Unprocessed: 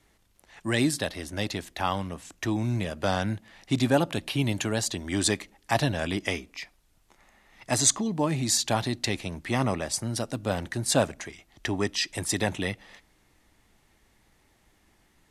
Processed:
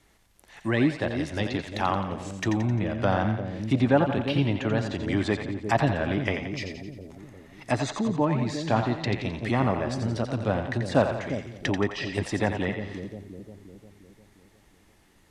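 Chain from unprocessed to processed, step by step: treble ducked by the level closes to 2000 Hz, closed at -25 dBFS; on a send: split-band echo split 520 Hz, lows 0.353 s, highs 87 ms, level -7 dB; on the sum: gain +2 dB

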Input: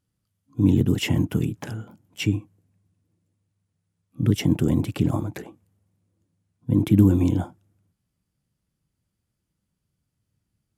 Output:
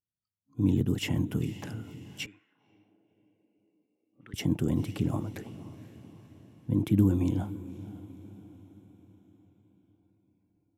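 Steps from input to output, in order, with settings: diffused feedback echo 0.512 s, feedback 51%, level -15.5 dB; 2.26–4.34 auto-wah 500–1800 Hz, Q 2.6, up, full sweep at -24.5 dBFS; spectral noise reduction 15 dB; gain -7 dB

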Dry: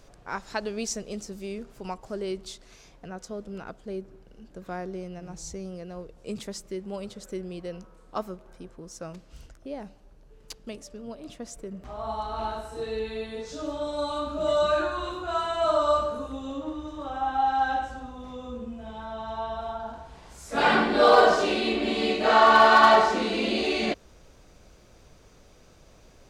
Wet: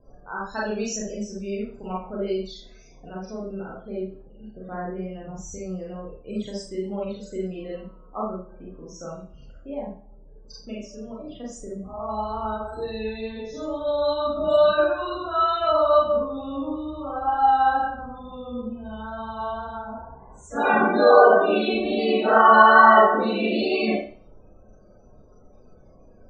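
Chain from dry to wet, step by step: 3.07–4.65 CVSD 32 kbps; loudest bins only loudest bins 32; Schroeder reverb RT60 0.41 s, combs from 29 ms, DRR -5.5 dB; vibrato 2.2 Hz 16 cents; gain -2.5 dB

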